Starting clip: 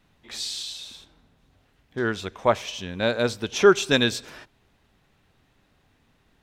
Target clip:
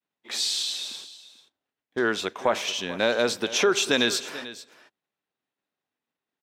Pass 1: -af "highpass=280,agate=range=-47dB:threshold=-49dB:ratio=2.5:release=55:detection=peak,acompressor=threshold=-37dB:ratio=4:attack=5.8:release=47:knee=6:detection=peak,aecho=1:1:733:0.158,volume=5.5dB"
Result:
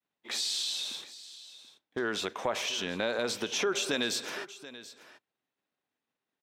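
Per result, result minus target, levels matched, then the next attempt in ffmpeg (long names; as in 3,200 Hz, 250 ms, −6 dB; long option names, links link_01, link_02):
echo 292 ms late; downward compressor: peak gain reduction +8.5 dB
-af "highpass=280,agate=range=-47dB:threshold=-49dB:ratio=2.5:release=55:detection=peak,acompressor=threshold=-37dB:ratio=4:attack=5.8:release=47:knee=6:detection=peak,aecho=1:1:441:0.158,volume=5.5dB"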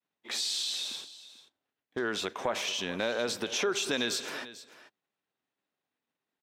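downward compressor: peak gain reduction +8.5 dB
-af "highpass=280,agate=range=-47dB:threshold=-49dB:ratio=2.5:release=55:detection=peak,acompressor=threshold=-25.5dB:ratio=4:attack=5.8:release=47:knee=6:detection=peak,aecho=1:1:441:0.158,volume=5.5dB"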